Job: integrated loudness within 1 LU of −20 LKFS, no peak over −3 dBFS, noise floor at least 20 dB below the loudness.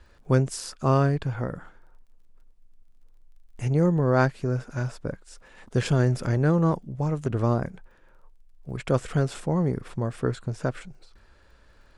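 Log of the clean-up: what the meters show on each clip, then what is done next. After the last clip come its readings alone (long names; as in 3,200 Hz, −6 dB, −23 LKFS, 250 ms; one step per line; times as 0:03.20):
crackle rate 18 per second; integrated loudness −26.0 LKFS; sample peak −7.0 dBFS; target loudness −20.0 LKFS
→ click removal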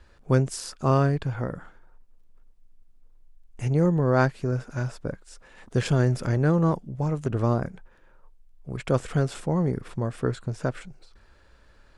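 crackle rate 0 per second; integrated loudness −26.0 LKFS; sample peak −7.0 dBFS; target loudness −20.0 LKFS
→ level +6 dB
brickwall limiter −3 dBFS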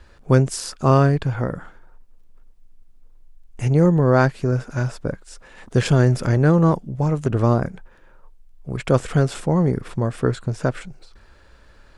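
integrated loudness −20.0 LKFS; sample peak −3.0 dBFS; background noise floor −50 dBFS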